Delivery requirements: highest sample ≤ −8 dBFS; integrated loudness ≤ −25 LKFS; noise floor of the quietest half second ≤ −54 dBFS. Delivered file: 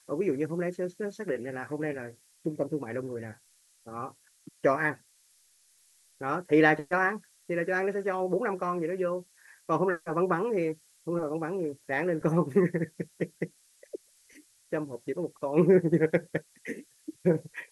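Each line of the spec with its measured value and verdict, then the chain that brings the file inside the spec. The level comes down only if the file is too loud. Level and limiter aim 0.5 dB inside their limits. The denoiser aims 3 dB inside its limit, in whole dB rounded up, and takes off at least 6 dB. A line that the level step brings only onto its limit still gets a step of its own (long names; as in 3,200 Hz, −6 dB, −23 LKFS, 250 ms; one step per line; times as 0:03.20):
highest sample −10.0 dBFS: in spec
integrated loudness −29.5 LKFS: in spec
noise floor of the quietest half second −64 dBFS: in spec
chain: no processing needed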